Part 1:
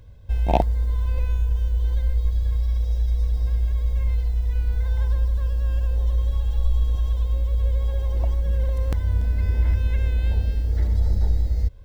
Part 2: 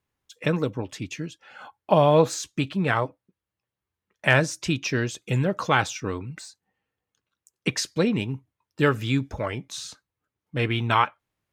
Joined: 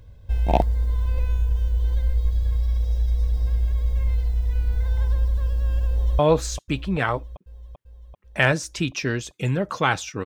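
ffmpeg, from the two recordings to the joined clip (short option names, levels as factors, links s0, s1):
-filter_complex "[0:a]apad=whole_dur=10.25,atrim=end=10.25,atrim=end=6.192[s0];[1:a]atrim=start=2.068:end=6.13[s1];[s0][s1]acrossfade=d=0.004:c1=hsin:c2=hsin,asplit=2[s2][s3];[s3]afade=t=in:st=5.9:d=0.01,afade=t=out:st=6.19:d=0.01,aecho=0:1:390|780|1170|1560|1950|2340|2730|3120|3510|3900:0.281838|0.197287|0.138101|0.0966705|0.0676694|0.0473686|0.033158|0.0232106|0.0162474|0.0113732[s4];[s2][s4]amix=inputs=2:normalize=0"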